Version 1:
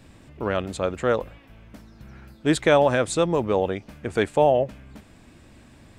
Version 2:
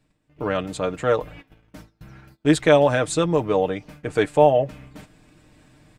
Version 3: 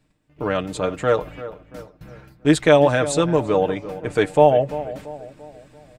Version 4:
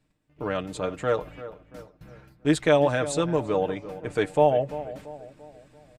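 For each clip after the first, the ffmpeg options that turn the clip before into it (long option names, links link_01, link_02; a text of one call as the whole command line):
ffmpeg -i in.wav -af "agate=range=-23dB:threshold=-44dB:ratio=16:detection=peak,aecho=1:1:6.6:0.6,areverse,acompressor=mode=upward:threshold=-36dB:ratio=2.5,areverse" out.wav
ffmpeg -i in.wav -filter_complex "[0:a]asplit=2[link_01][link_02];[link_02]adelay=340,lowpass=frequency=1800:poles=1,volume=-14dB,asplit=2[link_03][link_04];[link_04]adelay=340,lowpass=frequency=1800:poles=1,volume=0.47,asplit=2[link_05][link_06];[link_06]adelay=340,lowpass=frequency=1800:poles=1,volume=0.47,asplit=2[link_07][link_08];[link_08]adelay=340,lowpass=frequency=1800:poles=1,volume=0.47[link_09];[link_01][link_03][link_05][link_07][link_09]amix=inputs=5:normalize=0,volume=1.5dB" out.wav
ffmpeg -i in.wav -af "aresample=32000,aresample=44100,volume=-6dB" out.wav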